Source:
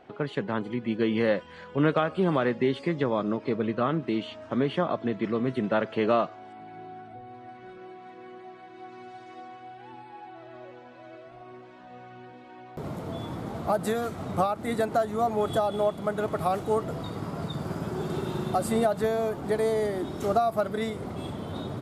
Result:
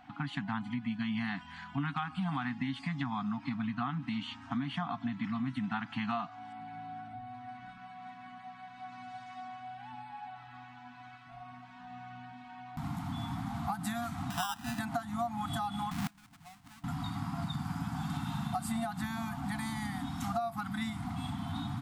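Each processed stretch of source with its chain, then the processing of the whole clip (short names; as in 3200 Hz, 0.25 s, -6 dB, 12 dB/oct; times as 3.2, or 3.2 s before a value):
14.3–14.79 low shelf 250 Hz -10 dB + sample-rate reducer 2200 Hz + mismatched tape noise reduction encoder only
15.91–16.84 half-waves squared off + dynamic EQ 8200 Hz, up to +3 dB, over -49 dBFS, Q 4.3 + flipped gate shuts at -24 dBFS, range -30 dB
whole clip: FFT band-reject 300–680 Hz; compressor 4:1, threshold -32 dBFS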